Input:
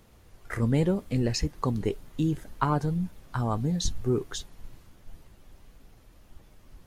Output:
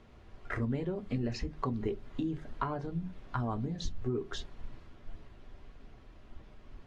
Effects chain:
low-pass filter 3,600 Hz 12 dB per octave
downward compressor 4 to 1, threshold −32 dBFS, peak gain reduction 11.5 dB
mains-hum notches 50/100/150 Hz
on a send at −7 dB: convolution reverb RT60 0.20 s, pre-delay 3 ms
on the sum: AAC 48 kbit/s 32,000 Hz

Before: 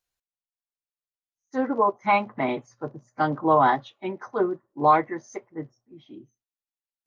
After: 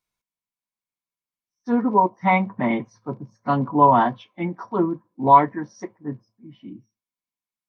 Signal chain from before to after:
hollow resonant body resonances 200/1,100/2,400 Hz, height 11 dB, ringing for 25 ms
wrong playback speed 48 kHz file played as 44.1 kHz
level −1 dB

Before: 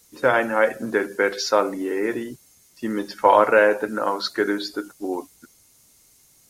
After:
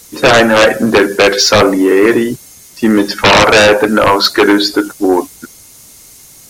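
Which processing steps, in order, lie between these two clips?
sine wavefolder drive 15 dB, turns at −1.5 dBFS
level −1 dB

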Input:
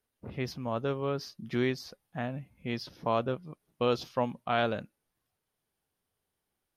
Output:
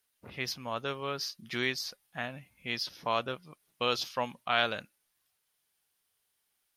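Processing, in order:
tilt shelving filter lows −9 dB

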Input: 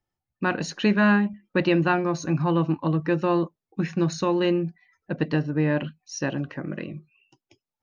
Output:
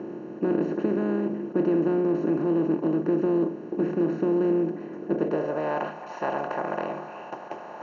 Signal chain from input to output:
compressor on every frequency bin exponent 0.2
band-pass filter sweep 330 Hz → 770 Hz, 0:05.08–0:05.79
level −3 dB

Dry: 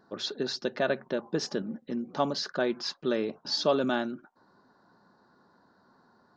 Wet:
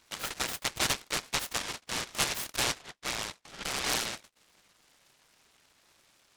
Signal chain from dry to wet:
neighbouring bands swapped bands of 2,000 Hz
0:02.72–0:03.86: elliptic low-pass filter 2,200 Hz, stop band 40 dB
short delay modulated by noise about 1,500 Hz, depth 0.14 ms
level −2 dB

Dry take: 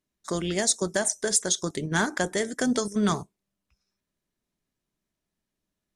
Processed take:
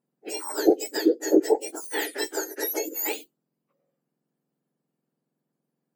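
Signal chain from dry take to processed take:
frequency axis turned over on the octave scale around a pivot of 1,700 Hz
0:02.24–0:02.72: high-pass filter 330 Hz 24 dB per octave

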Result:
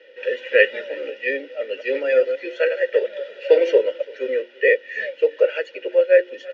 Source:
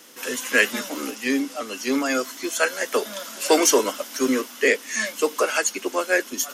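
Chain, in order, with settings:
0:01.49–0:03.78: delay that plays each chunk backwards 108 ms, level −8 dB
low-pass filter 3,900 Hz 24 dB per octave
mains-hum notches 60/120/180/240/300/360 Hz
comb filter 2.1 ms, depth 62%
speech leveller within 4 dB 2 s
formant filter e
single-tap delay 337 ms −23.5 dB
level +7.5 dB

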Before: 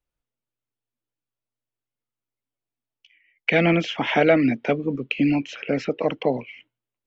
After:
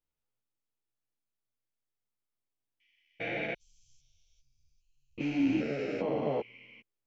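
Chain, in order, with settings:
spectrum averaged block by block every 400 ms
0:03.53–0:05.18: inverse Chebyshev band-stop filter 190–2,000 Hz, stop band 70 dB
string-ensemble chorus

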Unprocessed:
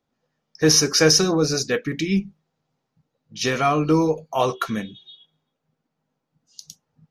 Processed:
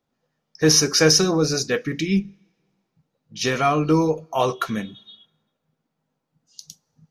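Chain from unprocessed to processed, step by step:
coupled-rooms reverb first 0.22 s, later 1.6 s, from −20 dB, DRR 19.5 dB

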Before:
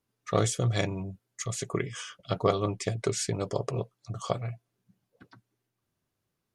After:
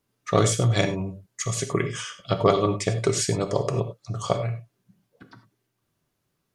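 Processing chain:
reverb whose tail is shaped and stops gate 120 ms flat, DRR 8 dB
level +5.5 dB

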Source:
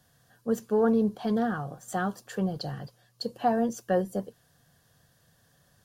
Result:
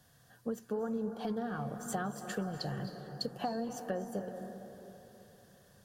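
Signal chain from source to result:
downward compressor 10 to 1, threshold −33 dBFS, peak gain reduction 14 dB
on a send: convolution reverb RT60 3.3 s, pre-delay 228 ms, DRR 7 dB

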